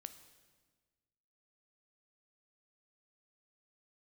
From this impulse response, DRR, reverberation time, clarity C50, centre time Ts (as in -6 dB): 10.0 dB, 1.4 s, 12.0 dB, 11 ms